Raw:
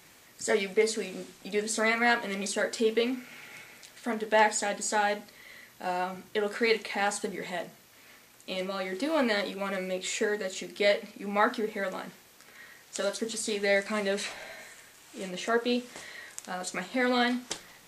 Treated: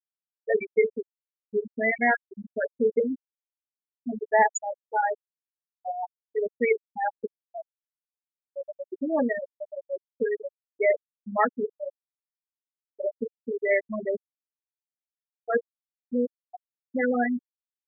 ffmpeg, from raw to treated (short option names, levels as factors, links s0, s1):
-filter_complex "[0:a]asplit=3[s0][s1][s2];[s0]atrim=end=15.652[s3];[s1]atrim=start=15.648:end=16.272,asetpts=PTS-STARTPTS,areverse[s4];[s2]atrim=start=16.268[s5];[s3][s4]acrossfade=d=0.004:c1=hsin:c2=hsin[s6];[s6][s5]acrossfade=d=0.004:c1=hsin:c2=hsin,afftfilt=real='re*gte(hypot(re,im),0.2)':imag='im*gte(hypot(re,im),0.2)':win_size=1024:overlap=0.75,volume=1.5"